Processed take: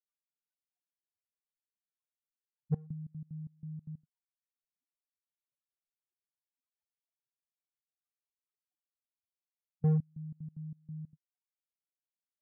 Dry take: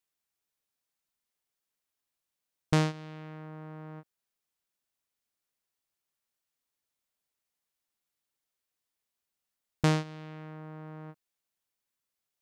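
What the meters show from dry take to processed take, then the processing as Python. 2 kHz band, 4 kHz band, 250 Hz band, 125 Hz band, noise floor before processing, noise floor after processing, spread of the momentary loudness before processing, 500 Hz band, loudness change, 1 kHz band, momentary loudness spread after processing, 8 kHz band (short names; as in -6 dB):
under -30 dB, under -35 dB, -4.0 dB, -1.5 dB, under -85 dBFS, under -85 dBFS, 17 LU, -10.5 dB, -7.5 dB, -19.0 dB, 16 LU, under -30 dB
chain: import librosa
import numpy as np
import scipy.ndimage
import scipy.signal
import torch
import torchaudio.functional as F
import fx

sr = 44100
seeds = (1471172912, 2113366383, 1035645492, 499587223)

p1 = fx.spec_topn(x, sr, count=1)
p2 = fx.low_shelf(p1, sr, hz=260.0, db=-4.0)
p3 = 10.0 ** (-36.5 / 20.0) * (np.abs((p2 / 10.0 ** (-36.5 / 20.0) + 3.0) % 4.0 - 2.0) - 1.0)
p4 = p2 + F.gain(torch.from_numpy(p3), -3.0).numpy()
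p5 = scipy.signal.sosfilt(scipy.signal.butter(2, 1300.0, 'lowpass', fs=sr, output='sos'), p4)
p6 = fx.step_gate(p5, sr, bpm=186, pattern='xx.x.xx..', floor_db=-24.0, edge_ms=4.5)
y = F.gain(torch.from_numpy(p6), 7.0).numpy()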